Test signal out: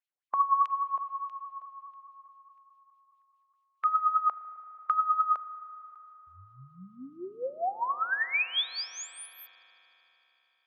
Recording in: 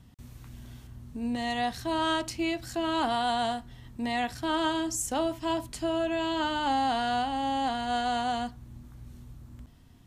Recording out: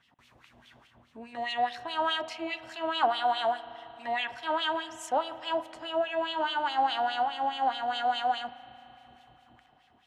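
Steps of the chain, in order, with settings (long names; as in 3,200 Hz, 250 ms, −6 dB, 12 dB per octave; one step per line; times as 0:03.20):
auto-filter band-pass sine 4.8 Hz 620–3,100 Hz
harmonic and percussive parts rebalanced percussive +3 dB
spring reverb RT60 4 s, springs 37 ms, chirp 40 ms, DRR 14.5 dB
level +5.5 dB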